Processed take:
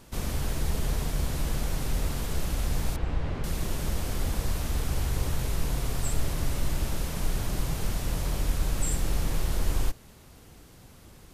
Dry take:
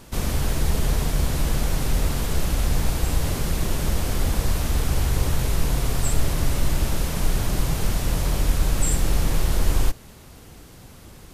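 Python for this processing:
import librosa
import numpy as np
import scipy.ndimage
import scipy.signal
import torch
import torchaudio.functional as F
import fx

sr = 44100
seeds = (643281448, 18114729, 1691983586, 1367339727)

y = fx.lowpass(x, sr, hz=2500.0, slope=12, at=(2.96, 3.44))
y = y * 10.0 ** (-6.5 / 20.0)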